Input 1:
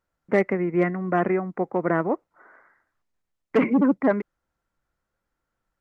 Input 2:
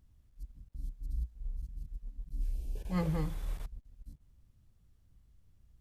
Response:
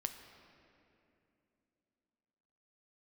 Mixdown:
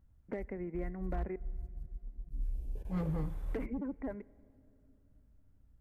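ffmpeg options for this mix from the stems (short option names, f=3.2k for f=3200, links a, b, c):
-filter_complex "[0:a]acompressor=threshold=-29dB:ratio=8,equalizer=f=1.2k:t=o:w=0.33:g=-9.5,volume=-8.5dB,asplit=3[a][b][c];[a]atrim=end=1.36,asetpts=PTS-STARTPTS,afade=t=out:st=1.356:d=0.004:c=hsin[d];[b]atrim=start=1.36:end=3.01,asetpts=PTS-STARTPTS,volume=0[e];[c]atrim=start=3.01,asetpts=PTS-STARTPTS,afade=t=in:d=0.004:c=hsin[f];[d][e][f]concat=n=3:v=0:a=1,asplit=2[g][h];[h]volume=-12.5dB[i];[1:a]highshelf=f=2.4k:g=-8,volume=-1.5dB[j];[2:a]atrim=start_sample=2205[k];[i][k]afir=irnorm=-1:irlink=0[l];[g][j][l]amix=inputs=3:normalize=0,equalizer=f=4.3k:w=0.62:g=-7,asoftclip=type=hard:threshold=-28.5dB"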